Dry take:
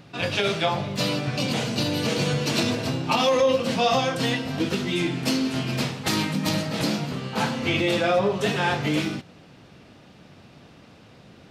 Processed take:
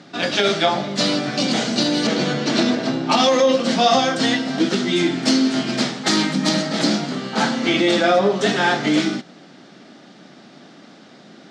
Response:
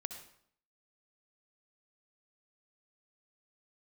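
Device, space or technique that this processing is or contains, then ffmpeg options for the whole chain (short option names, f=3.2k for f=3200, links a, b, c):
television speaker: -filter_complex "[0:a]highpass=f=200:w=0.5412,highpass=f=200:w=1.3066,equalizer=f=480:t=q:w=4:g=-7,equalizer=f=1k:t=q:w=4:g=-7,equalizer=f=2.6k:t=q:w=4:g=-9,lowpass=f=7.7k:w=0.5412,lowpass=f=7.7k:w=1.3066,asettb=1/sr,asplit=3[a][b][c];[a]atrim=end=2.074[d];[b]atrim=start=2.07:end=3.1,asetpts=PTS-STARTPTS,afade=t=in:d=0.004:c=qsin,afade=t=out:st=1.026:d=0.004:c=qsin,aemphasis=mode=reproduction:type=50fm[e];[c]atrim=start=3.096[f];[d][e]acrossfade=d=0.004:c1=hsin:c2=qsin[g];[g][f]acrossfade=d=0.004:c1=qsin:c2=hsin,volume=8.5dB"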